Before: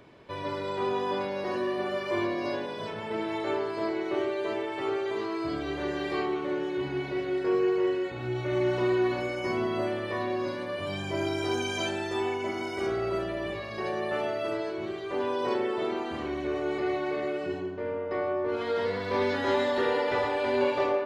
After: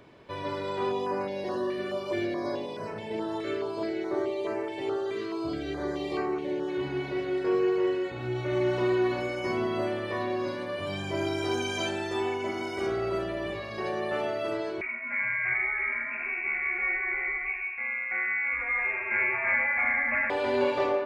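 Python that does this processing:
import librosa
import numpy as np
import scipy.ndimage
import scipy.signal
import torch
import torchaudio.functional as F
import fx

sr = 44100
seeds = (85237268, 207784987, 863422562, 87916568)

y = fx.filter_held_notch(x, sr, hz=4.7, low_hz=850.0, high_hz=3400.0, at=(0.91, 6.67), fade=0.02)
y = fx.freq_invert(y, sr, carrier_hz=2600, at=(14.81, 20.3))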